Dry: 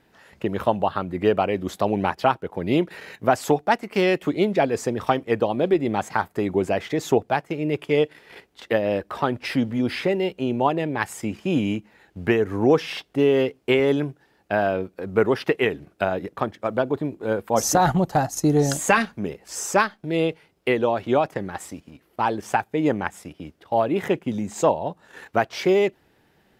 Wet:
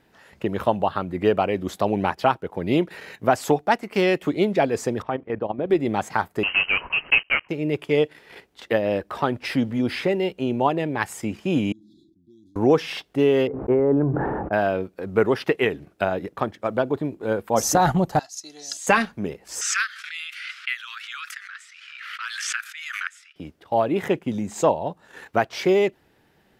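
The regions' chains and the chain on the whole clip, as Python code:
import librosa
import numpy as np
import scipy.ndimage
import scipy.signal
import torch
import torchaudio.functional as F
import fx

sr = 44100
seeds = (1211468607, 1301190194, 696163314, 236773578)

y = fx.chain(x, sr, fx.lowpass(hz=2000.0, slope=12),
    fx.level_steps(step_db=12), at=(5.02, 5.7))
y = fx.chain(y, sr, fx.block_float(bits=3),
    fx.freq_invert(carrier_hz=3000), at=(6.43, 7.49))
y = fx.chain(y, sr, fx.auto_wah(base_hz=430.0, top_hz=1400.0, q=7.1, full_db=-22.5, direction='up'),
    fx.brickwall_bandstop(low_hz=360.0, high_hz=3300.0),
    fx.sustainer(db_per_s=26.0), at=(11.72, 12.56))
y = fx.chain(y, sr, fx.lowpass(hz=1200.0, slope=24),
    fx.sustainer(db_per_s=22.0), at=(13.47, 14.53))
y = fx.chain(y, sr, fx.bandpass_q(hz=4700.0, q=1.9),
    fx.comb(ms=3.0, depth=0.47), at=(18.19, 18.87))
y = fx.chain(y, sr, fx.env_lowpass(base_hz=2600.0, full_db=-18.0),
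    fx.steep_highpass(hz=1300.0, slope=72),
    fx.pre_swell(db_per_s=34.0), at=(19.61, 23.36))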